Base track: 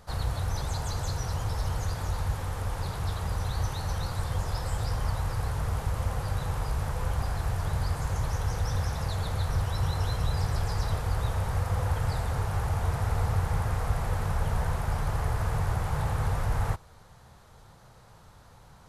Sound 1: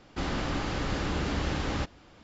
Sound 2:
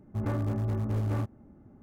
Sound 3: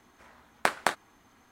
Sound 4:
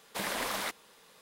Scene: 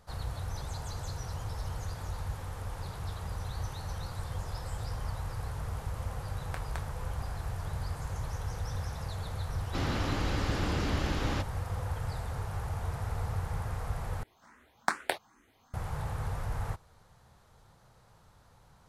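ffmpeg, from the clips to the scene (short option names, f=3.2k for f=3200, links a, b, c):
-filter_complex "[3:a]asplit=2[a][b];[0:a]volume=-7dB[c];[b]asplit=2[d][e];[e]afreqshift=2.4[f];[d][f]amix=inputs=2:normalize=1[g];[c]asplit=2[h][i];[h]atrim=end=14.234[j];[g]atrim=end=1.51,asetpts=PTS-STARTPTS,volume=-1dB[k];[i]atrim=start=15.736[l];[a]atrim=end=1.51,asetpts=PTS-STARTPTS,volume=-17dB,afade=t=in:d=0.004:c=hsin,afade=t=out:st=1.506:d=0.004:c=hsin,adelay=259749S[m];[1:a]atrim=end=2.23,asetpts=PTS-STARTPTS,volume=-2dB,afade=t=in:d=0.004:c=hsin,afade=t=out:st=2.226:d=0.004:c=hsin,adelay=9570[n];[j][k]acrossfade=d=0.004:c1=hsin:c2=hsin[o];[o][l]acrossfade=d=0.004:c1=hsin:c2=hsin[p];[p][m][n]amix=inputs=3:normalize=0"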